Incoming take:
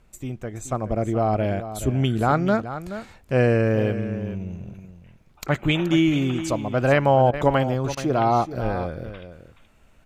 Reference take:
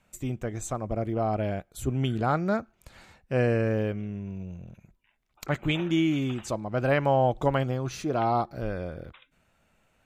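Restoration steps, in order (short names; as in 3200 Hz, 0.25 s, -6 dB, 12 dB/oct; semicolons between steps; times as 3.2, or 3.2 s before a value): interpolate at 7.31/7.95, 21 ms; expander -42 dBFS, range -21 dB; inverse comb 0.426 s -12 dB; gain 0 dB, from 0.72 s -5.5 dB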